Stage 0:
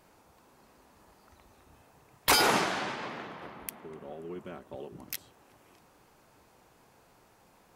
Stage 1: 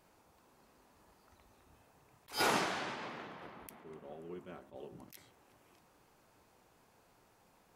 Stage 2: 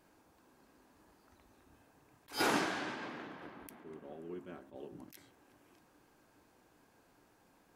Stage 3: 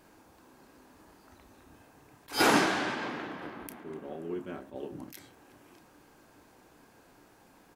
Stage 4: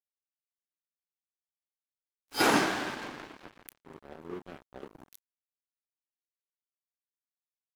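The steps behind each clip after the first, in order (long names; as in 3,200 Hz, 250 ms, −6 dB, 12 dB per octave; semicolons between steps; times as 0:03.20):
hum removal 68.31 Hz, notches 34; level that may rise only so fast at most 230 dB per second; level −5.5 dB
hollow resonant body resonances 290/1,600 Hz, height 8 dB, ringing for 30 ms; level −1.5 dB
double-tracking delay 31 ms −11 dB; level +8 dB
dead-zone distortion −40 dBFS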